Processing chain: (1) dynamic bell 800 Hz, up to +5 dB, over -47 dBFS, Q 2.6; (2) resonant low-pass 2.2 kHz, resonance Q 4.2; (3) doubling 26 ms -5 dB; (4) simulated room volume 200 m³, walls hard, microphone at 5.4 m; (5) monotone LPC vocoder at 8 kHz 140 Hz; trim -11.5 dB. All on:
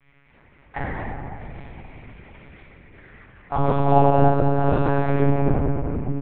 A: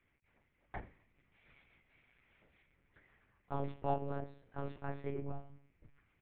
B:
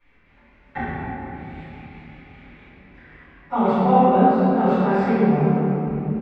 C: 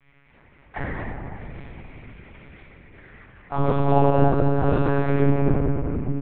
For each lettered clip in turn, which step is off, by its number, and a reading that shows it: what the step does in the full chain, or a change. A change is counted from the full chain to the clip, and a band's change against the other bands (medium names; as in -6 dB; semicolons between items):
4, momentary loudness spread change -7 LU; 5, 125 Hz band -5.0 dB; 1, loudness change -1.0 LU